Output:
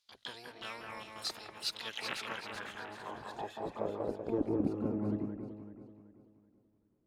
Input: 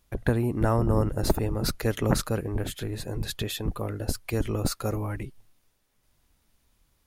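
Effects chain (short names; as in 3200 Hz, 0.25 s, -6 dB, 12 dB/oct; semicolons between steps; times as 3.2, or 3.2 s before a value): harmoniser +12 st -5 dB; band-pass sweep 4300 Hz -> 260 Hz, 1.51–4.65; echo with dull and thin repeats by turns 0.191 s, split 2300 Hz, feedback 61%, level -3 dB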